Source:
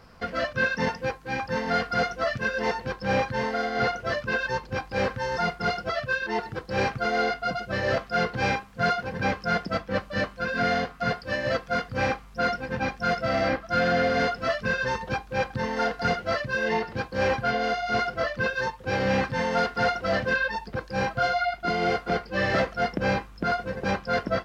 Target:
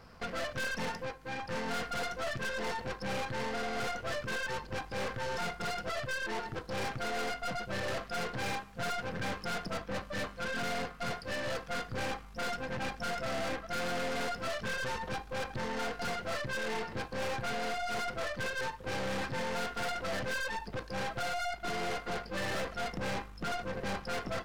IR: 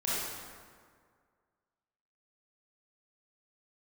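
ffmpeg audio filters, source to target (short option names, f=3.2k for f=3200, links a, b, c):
-filter_complex "[0:a]asettb=1/sr,asplit=3[a][b][c];[a]atrim=end=1.024[d];[b]atrim=start=1.02:end=1.48,asetpts=PTS-STARTPTS,afade=t=in:d=0.004:c=qsin,afade=t=out:st=0.456:d=0.004:c=qsin,acompressor=threshold=-35dB:ratio=2[e];[c]atrim=start=1.476[f];[d][e]acrossfade=d=0.004:c1=hsin:c2=qsin[g];[g][f]acrossfade=d=0.004:c1=qsin:c2=hsin,aeval=exprs='(tanh(50.1*val(0)+0.65)-tanh(0.65))/50.1':c=same,asplit=2[h][i];[1:a]atrim=start_sample=2205,atrim=end_sample=6615[j];[i][j]afir=irnorm=-1:irlink=0,volume=-27.5dB[k];[h][k]amix=inputs=2:normalize=0"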